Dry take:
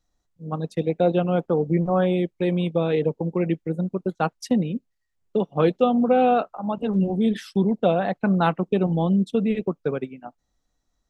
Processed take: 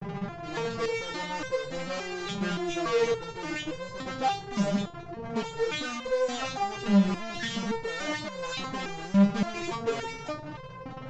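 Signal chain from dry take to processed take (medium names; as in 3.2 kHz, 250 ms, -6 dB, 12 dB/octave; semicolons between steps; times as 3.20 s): delay that grows with frequency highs late, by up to 196 ms; level-controlled noise filter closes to 760 Hz, open at -20 dBFS; band noise 110–180 Hz -39 dBFS; fuzz box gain 49 dB, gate -43 dBFS; resampled via 16 kHz; resonator arpeggio 3.5 Hz 200–520 Hz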